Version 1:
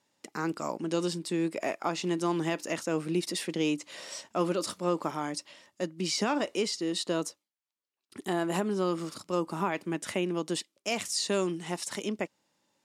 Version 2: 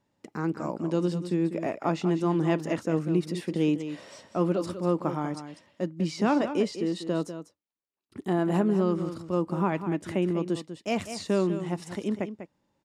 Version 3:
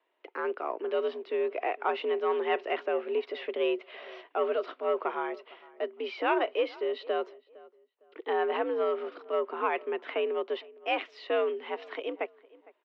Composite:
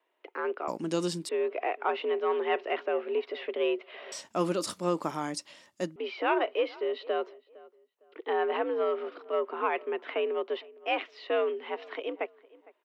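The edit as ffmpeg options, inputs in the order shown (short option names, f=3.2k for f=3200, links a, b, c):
-filter_complex "[0:a]asplit=2[a][b];[2:a]asplit=3[c][d][e];[c]atrim=end=0.682[f];[a]atrim=start=0.678:end=1.292[g];[d]atrim=start=1.288:end=4.122[h];[b]atrim=start=4.118:end=5.962[i];[e]atrim=start=5.958[j];[f][g]acrossfade=d=0.004:c1=hsin:c2=hsin[k];[k][h]acrossfade=d=0.004:c1=hsin:c2=hsin[l];[l][i]acrossfade=d=0.004:c1=hsin:c2=hsin[m];[m][j]acrossfade=d=0.004:c1=hsin:c2=hsin"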